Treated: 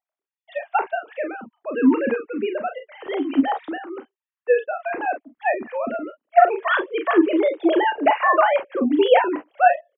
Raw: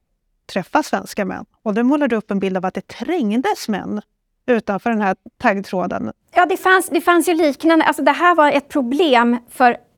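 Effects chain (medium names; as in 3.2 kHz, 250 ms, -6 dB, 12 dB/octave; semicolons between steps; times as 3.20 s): formants replaced by sine waves; on a send: early reflections 33 ms -8.5 dB, 46 ms -10.5 dB; on the sum: trim -4.5 dB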